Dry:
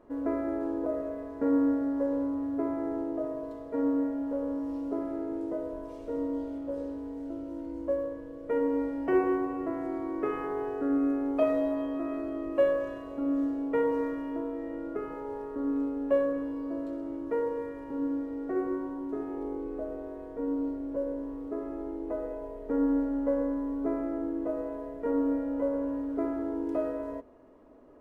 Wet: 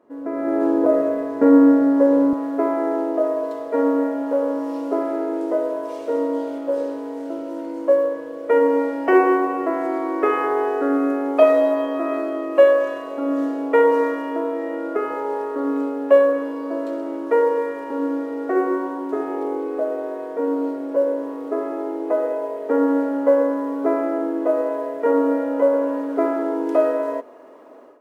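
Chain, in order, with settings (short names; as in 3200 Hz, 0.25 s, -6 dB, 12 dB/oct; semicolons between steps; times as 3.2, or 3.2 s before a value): HPF 210 Hz 12 dB/oct, from 2.33 s 450 Hz; AGC gain up to 15.5 dB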